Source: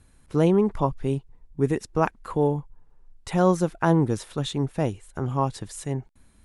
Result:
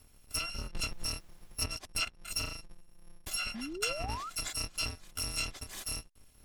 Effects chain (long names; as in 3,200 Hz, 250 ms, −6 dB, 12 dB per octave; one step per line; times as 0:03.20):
samples in bit-reversed order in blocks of 256 samples
treble cut that deepens with the level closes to 2,100 Hz, closed at −15.5 dBFS
0:00.89–0:01.61: background noise pink −63 dBFS
0:03.54–0:04.30: sound drawn into the spectrogram rise 210–1,400 Hz −38 dBFS
level −2.5 dB